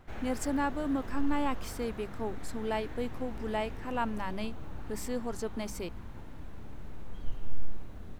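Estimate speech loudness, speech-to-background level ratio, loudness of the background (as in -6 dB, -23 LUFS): -35.5 LUFS, 10.5 dB, -46.0 LUFS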